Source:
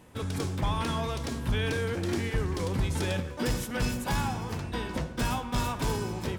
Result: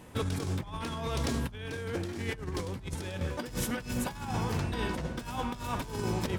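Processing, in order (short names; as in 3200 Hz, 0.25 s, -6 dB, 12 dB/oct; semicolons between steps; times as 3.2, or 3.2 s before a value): negative-ratio compressor -33 dBFS, ratio -0.5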